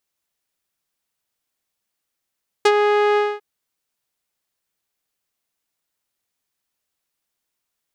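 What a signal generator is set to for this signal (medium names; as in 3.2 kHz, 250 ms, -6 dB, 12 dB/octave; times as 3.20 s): synth note saw G#4 12 dB/octave, low-pass 2.2 kHz, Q 0.75, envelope 2 oct, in 0.06 s, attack 7.2 ms, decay 0.06 s, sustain -4.5 dB, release 0.23 s, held 0.52 s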